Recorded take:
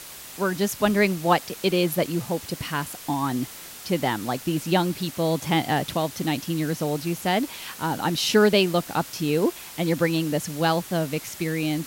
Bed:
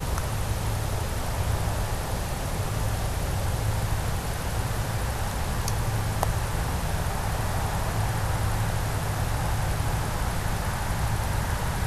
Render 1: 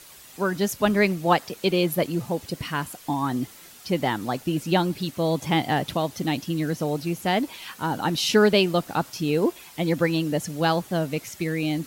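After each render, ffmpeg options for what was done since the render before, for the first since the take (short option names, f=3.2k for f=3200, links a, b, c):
-af "afftdn=nr=8:nf=-41"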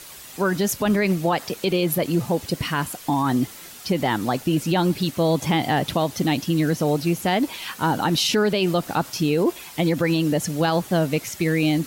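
-af "alimiter=limit=-17.5dB:level=0:latency=1:release=52,acontrast=51"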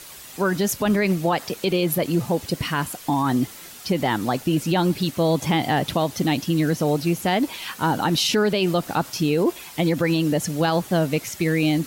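-af anull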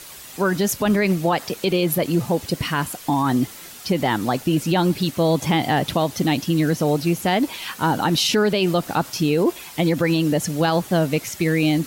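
-af "volume=1.5dB"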